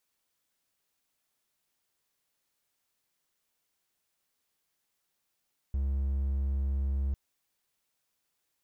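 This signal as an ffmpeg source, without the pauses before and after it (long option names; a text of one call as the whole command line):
ffmpeg -f lavfi -i "aevalsrc='0.0562*(1-4*abs(mod(68.2*t+0.25,1)-0.5))':duration=1.4:sample_rate=44100" out.wav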